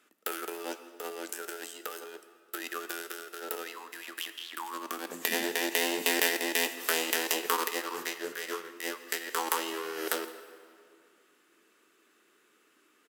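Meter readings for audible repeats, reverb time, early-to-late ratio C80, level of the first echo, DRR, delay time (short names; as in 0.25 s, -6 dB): 1, 2.2 s, 12.0 dB, -22.5 dB, 10.0 dB, 0.165 s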